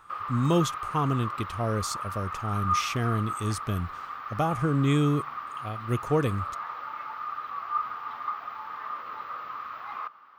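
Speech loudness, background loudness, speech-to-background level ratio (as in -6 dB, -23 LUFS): -28.5 LUFS, -34.5 LUFS, 6.0 dB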